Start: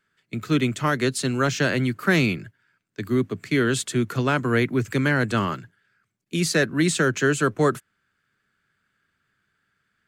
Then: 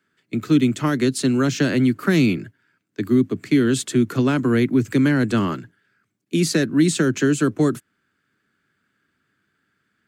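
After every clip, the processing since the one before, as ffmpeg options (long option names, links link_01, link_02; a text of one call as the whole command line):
ffmpeg -i in.wav -filter_complex "[0:a]highpass=61,equalizer=frequency=290:width=1.5:gain=9.5,acrossover=split=270|3000[link_01][link_02][link_03];[link_02]acompressor=threshold=-22dB:ratio=6[link_04];[link_01][link_04][link_03]amix=inputs=3:normalize=0,volume=1dB" out.wav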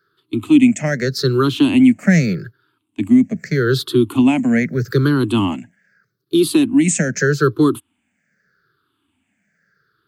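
ffmpeg -i in.wav -af "afftfilt=real='re*pow(10,21/40*sin(2*PI*(0.59*log(max(b,1)*sr/1024/100)/log(2)-(-0.81)*(pts-256)/sr)))':imag='im*pow(10,21/40*sin(2*PI*(0.59*log(max(b,1)*sr/1024/100)/log(2)-(-0.81)*(pts-256)/sr)))':win_size=1024:overlap=0.75,volume=-1dB" out.wav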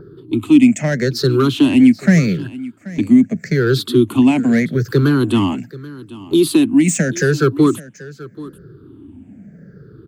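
ffmpeg -i in.wav -filter_complex "[0:a]acrossover=split=490[link_01][link_02];[link_01]acompressor=mode=upward:threshold=-16dB:ratio=2.5[link_03];[link_02]asoftclip=type=tanh:threshold=-16.5dB[link_04];[link_03][link_04]amix=inputs=2:normalize=0,aecho=1:1:783:0.119,volume=1.5dB" out.wav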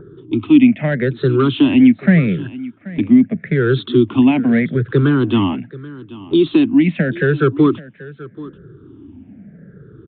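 ffmpeg -i in.wav -af "aresample=8000,aresample=44100" out.wav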